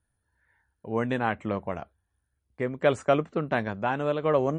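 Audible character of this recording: tremolo saw down 0.71 Hz, depth 40%; MP3

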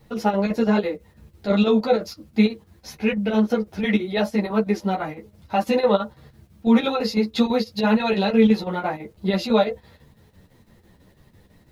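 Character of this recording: a quantiser's noise floor 12-bit, dither triangular; chopped level 6 Hz, depth 60%, duty 75%; a shimmering, thickened sound

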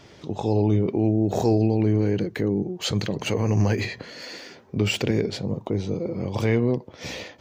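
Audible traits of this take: noise floor -49 dBFS; spectral tilt -6.5 dB/octave

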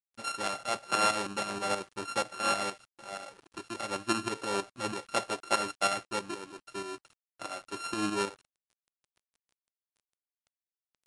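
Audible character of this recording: a buzz of ramps at a fixed pitch in blocks of 32 samples; tremolo saw up 6.3 Hz, depth 60%; a quantiser's noise floor 10-bit, dither none; MP3

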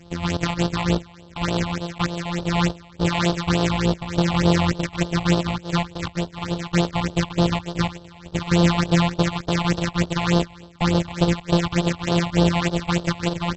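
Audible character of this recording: a buzz of ramps at a fixed pitch in blocks of 256 samples; phasing stages 6, 3.4 Hz, lowest notch 400–2100 Hz; AAC

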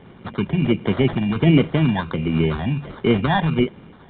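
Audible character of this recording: phasing stages 12, 1.4 Hz, lowest notch 400–2500 Hz; aliases and images of a low sample rate 2.6 kHz, jitter 0%; µ-law

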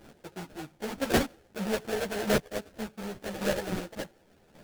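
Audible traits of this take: a quantiser's noise floor 10-bit, dither none; chopped level 0.88 Hz, depth 65%, duty 10%; aliases and images of a low sample rate 1.1 kHz, jitter 20%; a shimmering, thickened sound

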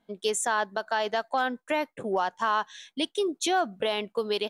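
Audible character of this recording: noise floor -76 dBFS; spectral tilt -2.0 dB/octave

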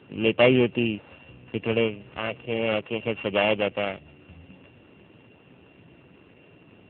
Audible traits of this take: a buzz of ramps at a fixed pitch in blocks of 16 samples; AMR-NB

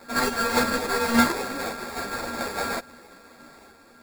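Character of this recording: a buzz of ramps at a fixed pitch in blocks of 32 samples; random-step tremolo; aliases and images of a low sample rate 3 kHz, jitter 0%; a shimmering, thickened sound

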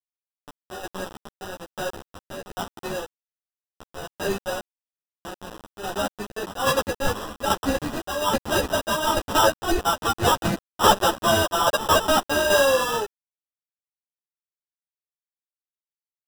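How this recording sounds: a quantiser's noise floor 6-bit, dither none; tremolo saw down 1.2 Hz, depth 60%; aliases and images of a low sample rate 2.2 kHz, jitter 0%; a shimmering, thickened sound

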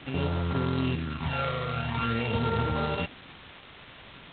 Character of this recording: a buzz of ramps at a fixed pitch in blocks of 32 samples; phasing stages 12, 0.47 Hz, lowest notch 270–2900 Hz; a quantiser's noise floor 8-bit, dither triangular; G.726

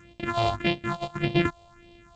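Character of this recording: a buzz of ramps at a fixed pitch in blocks of 128 samples; phasing stages 4, 1.7 Hz, lowest notch 270–1400 Hz; G.722

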